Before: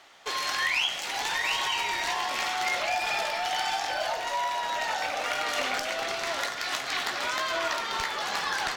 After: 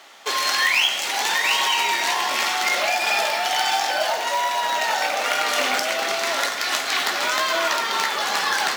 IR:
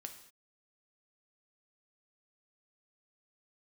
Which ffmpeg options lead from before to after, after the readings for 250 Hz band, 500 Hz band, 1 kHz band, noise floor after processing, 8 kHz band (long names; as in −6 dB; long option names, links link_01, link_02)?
+6.5 dB, +7.0 dB, +7.0 dB, −27 dBFS, +9.5 dB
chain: -filter_complex "[0:a]asplit=2[link_01][link_02];[1:a]atrim=start_sample=2205,highshelf=frequency=6900:gain=8[link_03];[link_02][link_03]afir=irnorm=-1:irlink=0,volume=7dB[link_04];[link_01][link_04]amix=inputs=2:normalize=0,acrusher=bits=5:mode=log:mix=0:aa=0.000001,highpass=frequency=190:width=0.5412,highpass=frequency=190:width=1.3066"